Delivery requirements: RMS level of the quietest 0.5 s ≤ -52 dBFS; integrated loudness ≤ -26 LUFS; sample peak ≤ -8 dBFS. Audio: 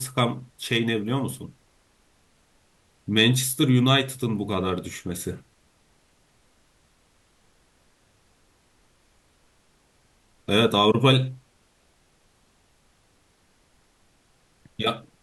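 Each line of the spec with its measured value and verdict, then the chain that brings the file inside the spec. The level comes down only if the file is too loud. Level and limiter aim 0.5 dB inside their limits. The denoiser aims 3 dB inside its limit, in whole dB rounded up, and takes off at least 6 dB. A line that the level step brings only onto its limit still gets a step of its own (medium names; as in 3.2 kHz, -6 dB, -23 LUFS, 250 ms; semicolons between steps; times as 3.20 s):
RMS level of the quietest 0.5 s -63 dBFS: pass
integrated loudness -23.0 LUFS: fail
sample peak -6.0 dBFS: fail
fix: trim -3.5 dB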